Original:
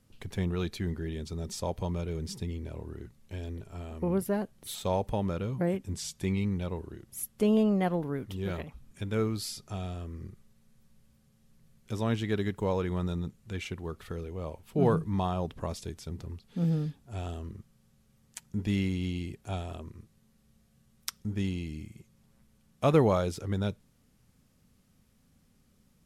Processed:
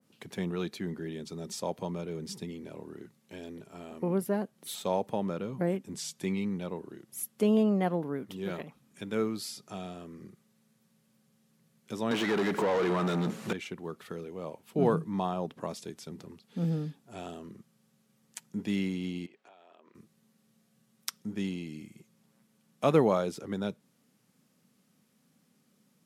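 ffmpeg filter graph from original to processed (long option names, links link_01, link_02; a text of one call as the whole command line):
ffmpeg -i in.wav -filter_complex "[0:a]asettb=1/sr,asplit=3[link_01][link_02][link_03];[link_01]atrim=end=12.114[link_04];[link_02]atrim=start=12.11:end=13.53,asetpts=PTS-STARTPTS,afade=type=in:duration=0.004:curve=qsin,afade=type=out:start_time=1.416:duration=0.004:curve=qsin,equalizer=frequency=9200:width=0.33:gain=4.5,acompressor=threshold=-38dB:ratio=10:attack=3.2:release=140:knee=1:detection=peak,asplit=2[link_05][link_06];[link_06]highpass=frequency=720:poles=1,volume=41dB,asoftclip=type=tanh:threshold=-18.5dB[link_07];[link_05][link_07]amix=inputs=2:normalize=0,lowpass=frequency=1800:poles=1,volume=-6dB[link_08];[link_03]atrim=start=13.526[link_09];[link_04][link_08]acrossfade=duration=0.004:curve1=hsin:curve2=qsin[link_10];[link_10][link_09]acrossfade=duration=0.004:curve1=qsin:curve2=hsin,asettb=1/sr,asplit=3[link_11][link_12][link_13];[link_11]atrim=end=19.264[link_14];[link_12]atrim=start=19.26:end=19.95,asetpts=PTS-STARTPTS,afade=type=in:duration=0.004:curve=qsin,afade=type=out:start_time=0.686:duration=0.004:curve=qsin,highpass=530,lowpass=3100,acompressor=threshold=-53dB:ratio=12:attack=3.2:release=140:knee=1:detection=peak[link_15];[link_13]atrim=start=19.946[link_16];[link_14][link_15]acrossfade=duration=0.004:curve1=hsin:curve2=qsin[link_17];[link_17][link_16]acrossfade=duration=0.004:curve1=qsin:curve2=hsin,highpass=frequency=160:width=0.5412,highpass=frequency=160:width=1.3066,adynamicequalizer=threshold=0.00447:dfrequency=1700:dqfactor=0.7:tfrequency=1700:tqfactor=0.7:attack=5:release=100:ratio=0.375:range=2:mode=cutabove:tftype=highshelf" out.wav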